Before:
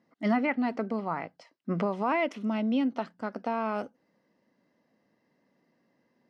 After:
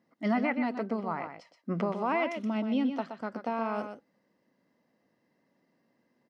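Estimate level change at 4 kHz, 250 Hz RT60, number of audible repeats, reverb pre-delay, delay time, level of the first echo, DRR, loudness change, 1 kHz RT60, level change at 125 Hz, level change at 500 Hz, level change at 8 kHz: -1.5 dB, none, 1, none, 0.123 s, -8.0 dB, none, -1.5 dB, none, -1.5 dB, -1.0 dB, n/a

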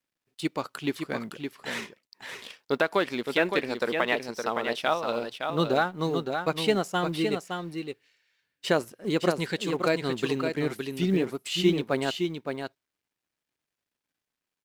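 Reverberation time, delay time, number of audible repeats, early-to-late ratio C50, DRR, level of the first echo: none, 0.565 s, 1, none, none, -6.0 dB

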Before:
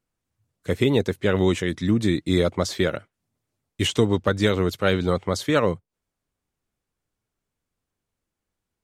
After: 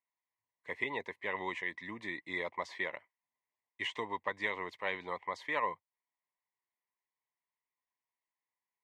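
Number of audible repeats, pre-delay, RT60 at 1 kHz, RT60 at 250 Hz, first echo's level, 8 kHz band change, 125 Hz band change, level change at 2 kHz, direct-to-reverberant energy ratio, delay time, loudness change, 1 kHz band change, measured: none, none, none, none, none, -25.5 dB, -32.0 dB, -6.0 dB, none, none, -15.0 dB, -6.5 dB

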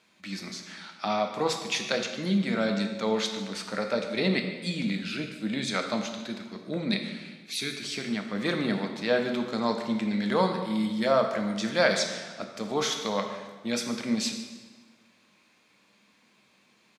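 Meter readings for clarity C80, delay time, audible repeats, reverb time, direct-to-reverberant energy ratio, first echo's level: 8.0 dB, 0.147 s, 1, 1.4 s, 3.5 dB, -16.0 dB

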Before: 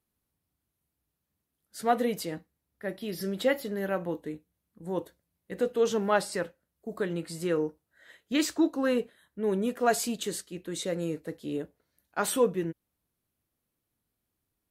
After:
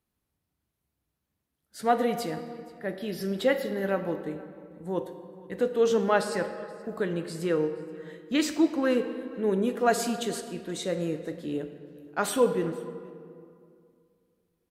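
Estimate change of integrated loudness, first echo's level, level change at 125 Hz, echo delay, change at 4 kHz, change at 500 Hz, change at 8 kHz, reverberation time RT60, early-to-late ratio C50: +1.5 dB, -23.0 dB, +2.0 dB, 0.476 s, +0.5 dB, +2.5 dB, -1.5 dB, 2.3 s, 9.5 dB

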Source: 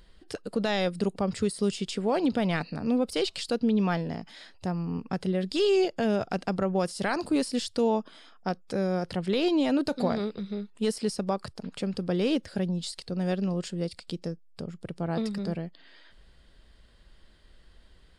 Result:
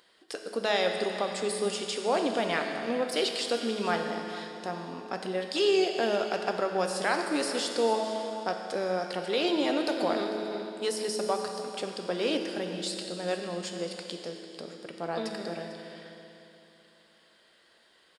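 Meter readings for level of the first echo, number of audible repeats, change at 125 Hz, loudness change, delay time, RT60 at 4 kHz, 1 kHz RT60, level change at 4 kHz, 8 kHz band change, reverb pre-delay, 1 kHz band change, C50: -15.5 dB, 1, -12.0 dB, -1.5 dB, 0.448 s, 2.8 s, 3.0 s, +3.0 dB, +3.0 dB, 9 ms, +2.5 dB, 4.5 dB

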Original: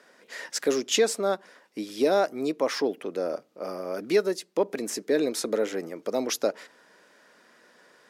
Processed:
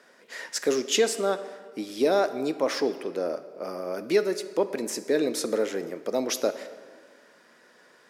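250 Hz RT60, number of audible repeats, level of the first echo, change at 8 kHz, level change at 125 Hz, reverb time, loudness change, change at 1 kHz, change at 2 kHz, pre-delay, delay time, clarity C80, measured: 2.1 s, none, none, +0.5 dB, 0.0 dB, 1.7 s, 0.0 dB, 0.0 dB, +0.5 dB, 3 ms, none, 14.5 dB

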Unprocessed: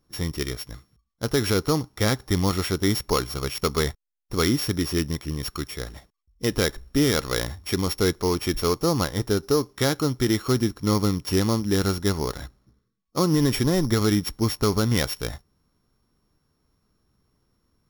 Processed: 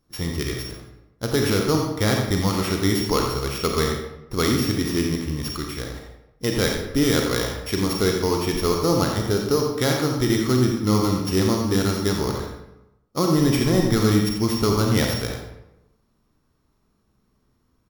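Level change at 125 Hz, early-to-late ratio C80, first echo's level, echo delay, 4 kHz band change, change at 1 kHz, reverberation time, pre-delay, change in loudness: +2.0 dB, 4.0 dB, -7.5 dB, 87 ms, +1.5 dB, +3.0 dB, 0.90 s, 31 ms, +2.0 dB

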